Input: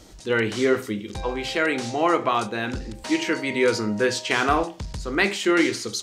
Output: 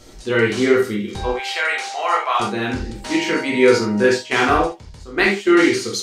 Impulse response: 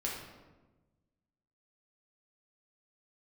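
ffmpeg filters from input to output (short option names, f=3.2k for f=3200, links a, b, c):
-filter_complex "[0:a]asettb=1/sr,asplit=3[a][b][c];[a]atrim=end=1.314[d];[b]atrim=start=1.31:end=2.4,asetpts=PTS-STARTPTS,afade=t=in:d=0.004:c=qsin,afade=t=out:st=1.086:d=0.004:c=qsin,highpass=f=660:w=0.5412,highpass=f=660:w=1.3066[e];[c]atrim=start=2.396[f];[d][e]acrossfade=d=0.004:c1=hsin:c2=qsin[g];[g][f]acrossfade=d=0.004:c1=qsin:c2=hsin,asettb=1/sr,asplit=3[h][i][j];[h]atrim=end=4.034[k];[i]atrim=start=4.03:end=5.58,asetpts=PTS-STARTPTS,afade=t=in:d=0.004:c=qsin,afade=t=out:st=1.546:d=0.004:c=qsin,agate=range=-11dB:threshold=-24dB:ratio=16:detection=peak[l];[j]atrim=start=5.576[m];[k][l]acrossfade=d=0.004:c1=hsin:c2=qsin[n];[n][m]acrossfade=d=0.004:c1=qsin:c2=hsin[o];[1:a]atrim=start_sample=2205,atrim=end_sample=3969[p];[o][p]afir=irnorm=-1:irlink=0,volume=3dB"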